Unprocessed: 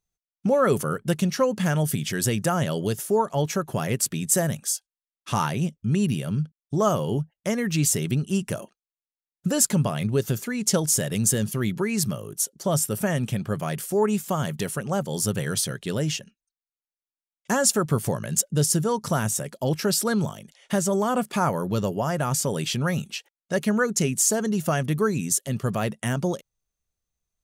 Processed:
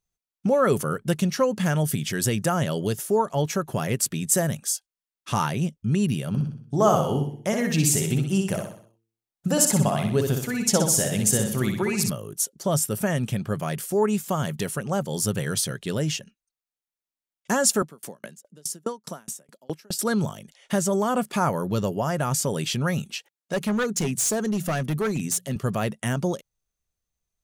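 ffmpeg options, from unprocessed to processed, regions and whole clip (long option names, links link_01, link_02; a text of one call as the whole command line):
ffmpeg -i in.wav -filter_complex "[0:a]asettb=1/sr,asplit=3[link_01][link_02][link_03];[link_01]atrim=end=6.284[link_04];[link_02]atrim=start=6.28:end=12.1,asetpts=PTS-STARTPTS,afade=type=in:duration=0.004:curve=qsin,afade=type=out:start_time=5.816:duration=0.004:curve=qsin,equalizer=frequency=770:width_type=o:width=0.42:gain=7,bandreject=frequency=56.41:width_type=h:width=4,bandreject=frequency=112.82:width_type=h:width=4,bandreject=frequency=169.23:width_type=h:width=4,bandreject=frequency=225.64:width_type=h:width=4,bandreject=frequency=282.05:width_type=h:width=4,bandreject=frequency=338.46:width_type=h:width=4,bandreject=frequency=394.87:width_type=h:width=4,bandreject=frequency=451.28:width_type=h:width=4,aecho=1:1:62|124|186|248|310:0.562|0.247|0.109|0.0479|0.0211,atrim=end_sample=256662[link_05];[link_03]atrim=start=12.096[link_06];[link_04][link_05]acrossfade=duration=0.004:curve1=hsin:curve2=qsin[link_07];[link_07][link_06]acrossfade=duration=0.004:curve1=qsin:curve2=hsin,asettb=1/sr,asplit=3[link_08][link_09][link_10];[link_08]atrim=end=17.824[link_11];[link_09]atrim=start=17.82:end=19.99,asetpts=PTS-STARTPTS,afade=type=in:duration=0.004:curve=qsin,afade=type=out:start_time=2.166:duration=0.004:curve=qsin,highpass=frequency=180:width=0.5412,highpass=frequency=180:width=1.3066,aeval=exprs='val(0)*pow(10,-37*if(lt(mod(4.8*n/s,1),2*abs(4.8)/1000),1-mod(4.8*n/s,1)/(2*abs(4.8)/1000),(mod(4.8*n/s,1)-2*abs(4.8)/1000)/(1-2*abs(4.8)/1000))/20)':channel_layout=same[link_12];[link_10]atrim=start=19.986[link_13];[link_11][link_12]acrossfade=duration=0.004:curve1=hsin:curve2=qsin[link_14];[link_14][link_13]acrossfade=duration=0.004:curve1=qsin:curve2=hsin,asettb=1/sr,asplit=3[link_15][link_16][link_17];[link_15]atrim=end=23.124[link_18];[link_16]atrim=start=23.12:end=25.56,asetpts=PTS-STARTPTS,afade=type=in:duration=0.004:curve=qsin,afade=type=out:start_time=2.436:duration=0.004:curve=qsin,highpass=frequency=83:width=0.5412,highpass=frequency=83:width=1.3066,bandreject=frequency=60:width_type=h:width=6,bandreject=frequency=120:width_type=h:width=6,bandreject=frequency=180:width_type=h:width=6,asoftclip=type=hard:threshold=-20.5dB[link_19];[link_17]atrim=start=25.556[link_20];[link_18][link_19]acrossfade=duration=0.004:curve1=hsin:curve2=qsin[link_21];[link_21][link_20]acrossfade=duration=0.004:curve1=qsin:curve2=hsin" out.wav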